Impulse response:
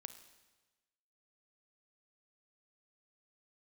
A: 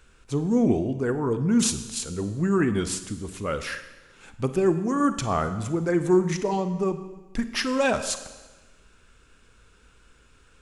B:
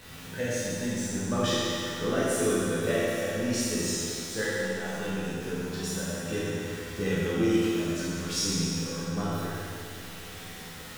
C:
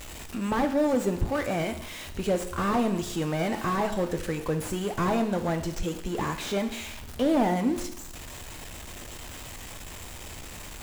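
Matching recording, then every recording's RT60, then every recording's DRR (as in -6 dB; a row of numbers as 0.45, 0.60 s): A; 1.2, 2.5, 0.80 s; 10.0, -9.5, 6.5 dB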